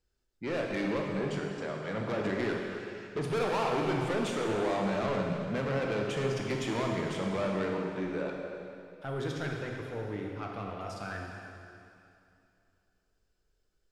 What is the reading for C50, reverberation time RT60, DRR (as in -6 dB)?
1.0 dB, 2.7 s, -0.5 dB